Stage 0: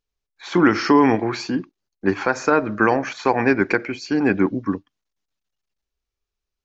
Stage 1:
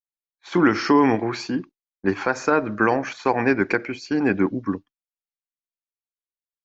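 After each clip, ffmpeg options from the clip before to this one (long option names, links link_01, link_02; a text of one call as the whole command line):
ffmpeg -i in.wav -af "agate=range=-33dB:threshold=-31dB:ratio=3:detection=peak,volume=-2dB" out.wav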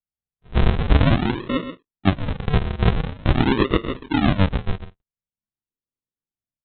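ffmpeg -i in.wav -af "aecho=1:1:131:0.299,aresample=8000,acrusher=samples=19:mix=1:aa=0.000001:lfo=1:lforange=19:lforate=0.46,aresample=44100,volume=2dB" out.wav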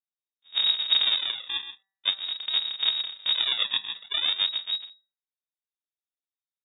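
ffmpeg -i in.wav -af "lowpass=frequency=3200:width_type=q:width=0.5098,lowpass=frequency=3200:width_type=q:width=0.6013,lowpass=frequency=3200:width_type=q:width=0.9,lowpass=frequency=3200:width_type=q:width=2.563,afreqshift=-3800,bandreject=frequency=194.4:width_type=h:width=4,bandreject=frequency=388.8:width_type=h:width=4,bandreject=frequency=583.2:width_type=h:width=4,bandreject=frequency=777.6:width_type=h:width=4,bandreject=frequency=972:width_type=h:width=4,bandreject=frequency=1166.4:width_type=h:width=4,bandreject=frequency=1360.8:width_type=h:width=4,bandreject=frequency=1555.2:width_type=h:width=4,bandreject=frequency=1749.6:width_type=h:width=4,bandreject=frequency=1944:width_type=h:width=4,volume=-8.5dB" out.wav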